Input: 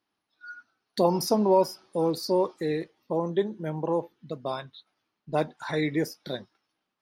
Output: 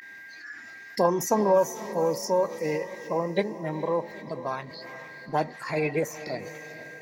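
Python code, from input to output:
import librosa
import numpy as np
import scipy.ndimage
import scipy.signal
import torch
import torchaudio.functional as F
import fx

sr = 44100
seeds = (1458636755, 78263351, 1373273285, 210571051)

y = x + 10.0 ** (-42.0 / 20.0) * np.sin(2.0 * np.pi * 1600.0 * np.arange(len(x)) / sr)
y = fx.formant_shift(y, sr, semitones=3)
y = fx.echo_diffused(y, sr, ms=455, feedback_pct=49, wet_db=-13.5)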